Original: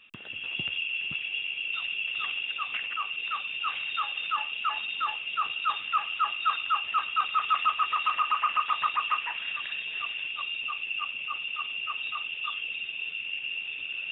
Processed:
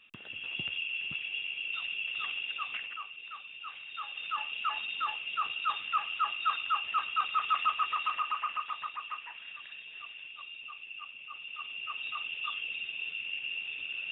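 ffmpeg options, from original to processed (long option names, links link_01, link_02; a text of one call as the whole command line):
ffmpeg -i in.wav -af "volume=14dB,afade=type=out:start_time=2.66:duration=0.46:silence=0.375837,afade=type=in:start_time=3.87:duration=0.68:silence=0.354813,afade=type=out:start_time=7.75:duration=1.15:silence=0.375837,afade=type=in:start_time=11.27:duration=1.01:silence=0.354813" out.wav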